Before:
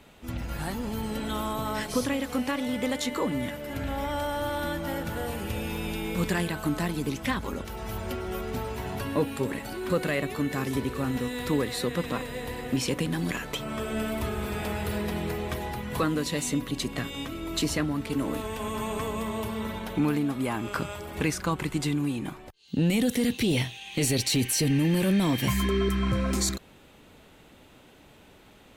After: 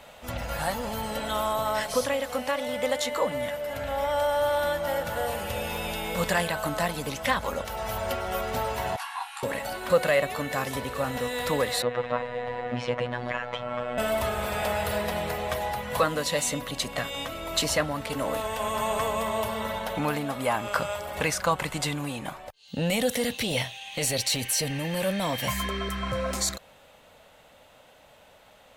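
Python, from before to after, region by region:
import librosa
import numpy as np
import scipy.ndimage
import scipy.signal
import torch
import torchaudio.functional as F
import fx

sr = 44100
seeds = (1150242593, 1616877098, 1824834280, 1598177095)

y = fx.chain(x, sr, fx.brickwall_bandpass(low_hz=710.0, high_hz=12000.0),
    fx.detune_double(cents=58), at=(8.96, 9.43))
y = fx.chain(y, sr, fx.lowpass(hz=2300.0, slope=12),
    fx.robotise(hz=122.0), at=(11.82, 13.98))
y = fx.low_shelf_res(y, sr, hz=450.0, db=-7.0, q=3.0)
y = fx.notch(y, sr, hz=2400.0, q=28.0)
y = fx.rider(y, sr, range_db=3, speed_s=2.0)
y = y * librosa.db_to_amplitude(3.0)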